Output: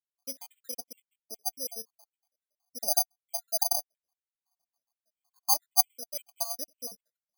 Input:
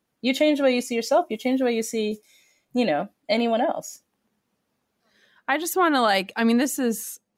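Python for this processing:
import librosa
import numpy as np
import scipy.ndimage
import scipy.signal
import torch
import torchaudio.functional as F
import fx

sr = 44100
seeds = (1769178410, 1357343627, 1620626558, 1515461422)

y = fx.spec_dropout(x, sr, seeds[0], share_pct=77)
y = fx.formant_cascade(y, sr, vowel='a')
y = (np.kron(y[::8], np.eye(8)[0]) * 8)[:len(y)]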